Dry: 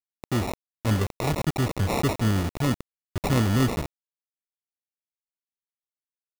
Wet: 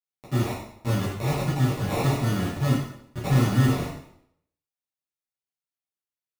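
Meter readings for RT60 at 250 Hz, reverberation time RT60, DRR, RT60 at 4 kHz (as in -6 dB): 0.75 s, 0.70 s, -8.5 dB, 0.65 s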